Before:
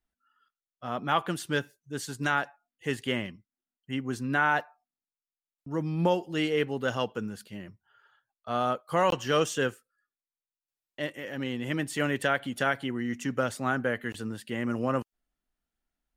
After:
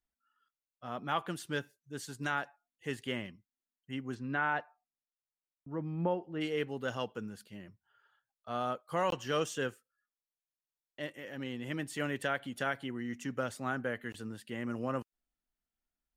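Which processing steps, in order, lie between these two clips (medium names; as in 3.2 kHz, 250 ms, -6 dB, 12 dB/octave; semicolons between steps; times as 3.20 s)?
4.14–6.40 s: low-pass 3.7 kHz -> 1.5 kHz 12 dB/octave; trim -7 dB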